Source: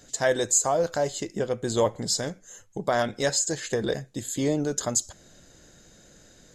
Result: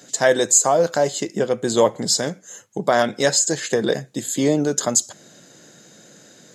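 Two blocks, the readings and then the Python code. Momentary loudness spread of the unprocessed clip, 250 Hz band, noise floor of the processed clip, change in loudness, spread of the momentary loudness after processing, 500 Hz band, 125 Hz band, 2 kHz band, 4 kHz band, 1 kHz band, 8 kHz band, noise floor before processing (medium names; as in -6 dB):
11 LU, +7.0 dB, -50 dBFS, +7.0 dB, 11 LU, +7.0 dB, +3.5 dB, +7.0 dB, +7.0 dB, +7.0 dB, +7.0 dB, -55 dBFS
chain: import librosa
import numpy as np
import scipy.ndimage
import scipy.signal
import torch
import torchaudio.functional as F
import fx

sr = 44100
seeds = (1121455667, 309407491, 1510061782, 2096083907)

y = scipy.signal.sosfilt(scipy.signal.butter(4, 140.0, 'highpass', fs=sr, output='sos'), x)
y = y * librosa.db_to_amplitude(7.0)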